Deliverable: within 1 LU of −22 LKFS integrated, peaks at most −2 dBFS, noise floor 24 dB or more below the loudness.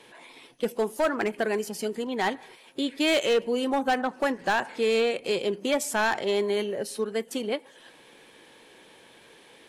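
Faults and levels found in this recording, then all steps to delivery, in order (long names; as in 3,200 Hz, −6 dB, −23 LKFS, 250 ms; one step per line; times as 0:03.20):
share of clipped samples 1.1%; peaks flattened at −18.0 dBFS; integrated loudness −27.0 LKFS; sample peak −18.0 dBFS; target loudness −22.0 LKFS
→ clipped peaks rebuilt −18 dBFS
level +5 dB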